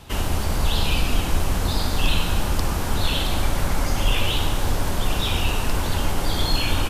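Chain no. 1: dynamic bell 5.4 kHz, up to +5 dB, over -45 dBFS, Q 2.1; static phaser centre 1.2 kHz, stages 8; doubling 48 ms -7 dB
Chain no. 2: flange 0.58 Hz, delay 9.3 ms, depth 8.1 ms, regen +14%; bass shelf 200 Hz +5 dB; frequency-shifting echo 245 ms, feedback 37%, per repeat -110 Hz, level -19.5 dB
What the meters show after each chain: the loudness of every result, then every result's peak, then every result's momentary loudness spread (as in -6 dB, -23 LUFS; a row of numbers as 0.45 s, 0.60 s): -25.0 LUFS, -25.0 LUFS; -7.0 dBFS, -6.5 dBFS; 4 LU, 2 LU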